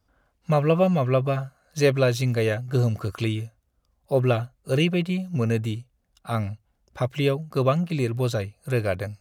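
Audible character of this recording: noise floor -72 dBFS; spectral tilt -6.5 dB/oct

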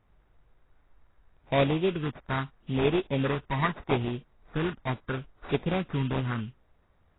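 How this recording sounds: a quantiser's noise floor 12-bit, dither triangular; phasing stages 6, 0.77 Hz, lowest notch 500–1700 Hz; aliases and images of a low sample rate 3000 Hz, jitter 20%; AAC

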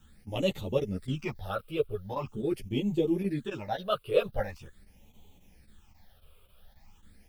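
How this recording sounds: a quantiser's noise floor 12-bit, dither triangular; phasing stages 8, 0.43 Hz, lowest notch 240–1600 Hz; chopped level 3.7 Hz, depth 65%, duty 90%; a shimmering, thickened sound

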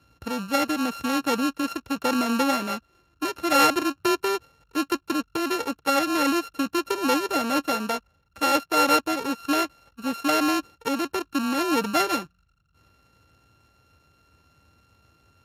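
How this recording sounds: a buzz of ramps at a fixed pitch in blocks of 32 samples; Speex

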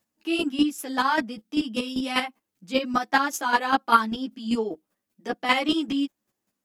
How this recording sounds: chopped level 5.1 Hz, depth 65%, duty 15%; a shimmering, thickened sound

